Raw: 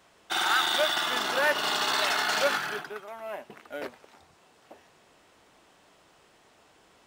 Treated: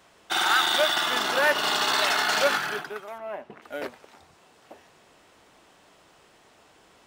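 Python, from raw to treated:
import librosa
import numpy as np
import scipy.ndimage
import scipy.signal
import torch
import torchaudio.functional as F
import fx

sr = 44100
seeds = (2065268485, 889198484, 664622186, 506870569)

y = fx.lowpass(x, sr, hz=1700.0, slope=6, at=(3.18, 3.62))
y = y * librosa.db_to_amplitude(3.0)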